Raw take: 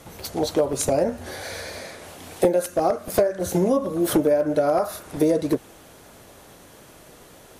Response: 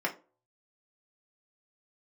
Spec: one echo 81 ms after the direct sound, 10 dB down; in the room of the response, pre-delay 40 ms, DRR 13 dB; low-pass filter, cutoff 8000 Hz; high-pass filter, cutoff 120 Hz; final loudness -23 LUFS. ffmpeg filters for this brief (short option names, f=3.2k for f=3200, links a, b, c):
-filter_complex "[0:a]highpass=120,lowpass=8k,aecho=1:1:81:0.316,asplit=2[a][b];[1:a]atrim=start_sample=2205,adelay=40[c];[b][c]afir=irnorm=-1:irlink=0,volume=-21dB[d];[a][d]amix=inputs=2:normalize=0,volume=-0.5dB"